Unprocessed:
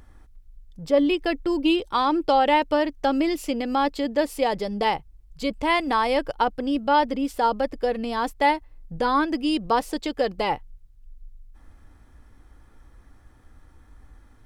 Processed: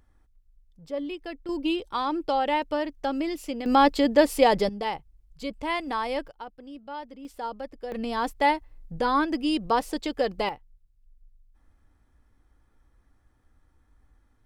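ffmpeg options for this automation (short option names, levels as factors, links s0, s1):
-af "asetnsamples=n=441:p=0,asendcmd='1.49 volume volume -6dB;3.66 volume volume 4dB;4.69 volume volume -7dB;6.28 volume volume -18dB;7.25 volume volume -12dB;7.92 volume volume -2dB;10.49 volume volume -12dB',volume=0.237"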